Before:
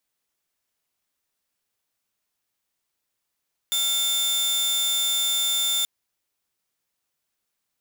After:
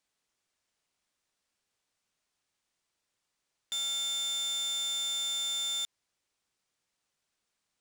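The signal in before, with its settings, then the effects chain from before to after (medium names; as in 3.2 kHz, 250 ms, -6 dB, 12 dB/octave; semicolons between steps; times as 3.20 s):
tone saw 3.56 kHz -18.5 dBFS 2.13 s
peak limiter -27 dBFS; Savitzky-Golay filter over 9 samples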